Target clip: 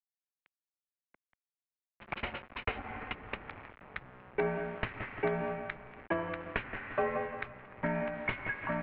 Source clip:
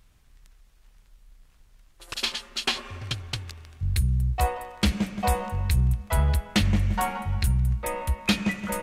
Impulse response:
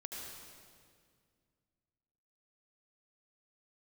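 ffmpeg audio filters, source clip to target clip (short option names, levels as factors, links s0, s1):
-filter_complex "[0:a]acrossover=split=110|1000[s0][s1][s2];[s0]acompressor=threshold=0.0178:ratio=4[s3];[s1]acompressor=threshold=0.0141:ratio=4[s4];[s2]acompressor=threshold=0.0158:ratio=4[s5];[s3][s4][s5]amix=inputs=3:normalize=0,aeval=exprs='val(0)*gte(abs(val(0)),0.00668)':c=same,highpass=f=340:t=q:w=0.5412,highpass=f=340:t=q:w=1.307,lowpass=f=2700:t=q:w=0.5176,lowpass=f=2700:t=q:w=0.7071,lowpass=f=2700:t=q:w=1.932,afreqshift=-320,volume=1.58"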